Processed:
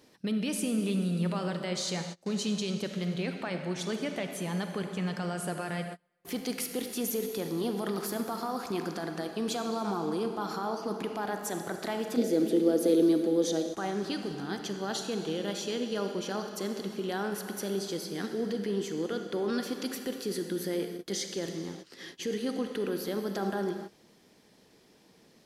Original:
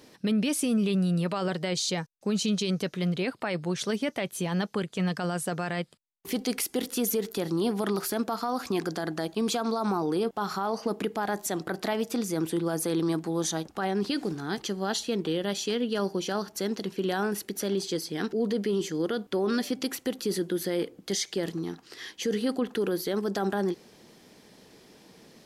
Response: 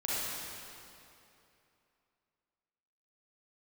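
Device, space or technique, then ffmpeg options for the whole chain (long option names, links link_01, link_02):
keyed gated reverb: -filter_complex "[0:a]asplit=3[link_01][link_02][link_03];[1:a]atrim=start_sample=2205[link_04];[link_02][link_04]afir=irnorm=-1:irlink=0[link_05];[link_03]apad=whole_len=1122595[link_06];[link_05][link_06]sidechaingate=range=-30dB:threshold=-44dB:ratio=16:detection=peak,volume=-9.5dB[link_07];[link_01][link_07]amix=inputs=2:normalize=0,asettb=1/sr,asplit=3[link_08][link_09][link_10];[link_08]atrim=end=12.174[link_11];[link_09]atrim=start=12.17:end=13.74,asetpts=PTS-STARTPTS,afade=type=in:duration=0.004:curve=qsin,afade=type=out:start_time=1.566:duration=0.004:curve=qsin,equalizer=frequency=125:width_type=o:width=1:gain=-11,equalizer=frequency=250:width_type=o:width=1:gain=9,equalizer=frequency=500:width_type=o:width=1:gain=12,equalizer=frequency=1000:width_type=o:width=1:gain=-11,equalizer=frequency=4000:width_type=o:width=1:gain=4,equalizer=frequency=8000:width_type=o:width=1:gain=-5[link_12];[link_10]atrim=start=13.736[link_13];[link_11][link_12]acrossfade=duration=0.004:curve1=hsin:curve2=qsin[link_14];[link_14][link_13]acrossfade=duration=0.004:curve1=qsin:curve2=hsin,volume=-7dB"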